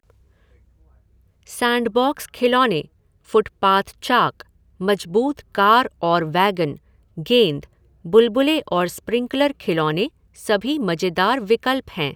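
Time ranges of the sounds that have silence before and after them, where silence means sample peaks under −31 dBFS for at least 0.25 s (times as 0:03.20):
0:01.47–0:02.82
0:03.33–0:04.42
0:04.80–0:06.75
0:07.18–0:07.64
0:08.05–0:10.07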